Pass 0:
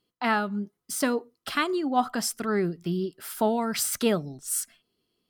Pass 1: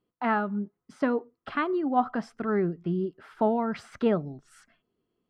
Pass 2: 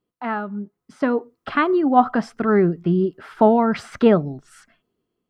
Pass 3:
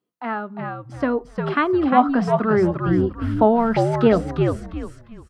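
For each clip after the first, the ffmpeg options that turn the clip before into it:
-af "lowpass=1.6k"
-af "dynaudnorm=f=320:g=7:m=12dB"
-filter_complex "[0:a]highpass=140,bandreject=f=50:t=h:w=6,bandreject=f=100:t=h:w=6,bandreject=f=150:t=h:w=6,bandreject=f=200:t=h:w=6,asplit=2[a][b];[b]asplit=4[c][d][e][f];[c]adelay=352,afreqshift=-81,volume=-4dB[g];[d]adelay=704,afreqshift=-162,volume=-14.2dB[h];[e]adelay=1056,afreqshift=-243,volume=-24.3dB[i];[f]adelay=1408,afreqshift=-324,volume=-34.5dB[j];[g][h][i][j]amix=inputs=4:normalize=0[k];[a][k]amix=inputs=2:normalize=0,volume=-1dB"

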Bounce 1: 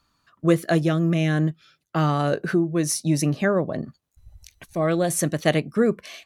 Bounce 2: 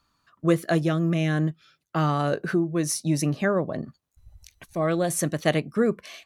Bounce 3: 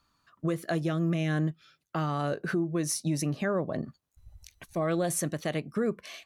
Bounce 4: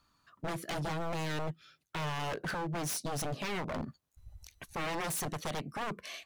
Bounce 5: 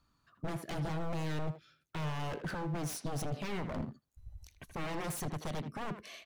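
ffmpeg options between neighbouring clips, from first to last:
-af "equalizer=f=1.1k:t=o:w=0.77:g=2,volume=-2.5dB"
-af "alimiter=limit=-18dB:level=0:latency=1:release=193,volume=-1.5dB"
-af "aeval=exprs='0.0299*(abs(mod(val(0)/0.0299+3,4)-2)-1)':c=same"
-filter_complex "[0:a]lowshelf=f=390:g=8.5,asplit=2[a][b];[b]adelay=80,highpass=300,lowpass=3.4k,asoftclip=type=hard:threshold=-31dB,volume=-9dB[c];[a][c]amix=inputs=2:normalize=0,volume=-6dB"

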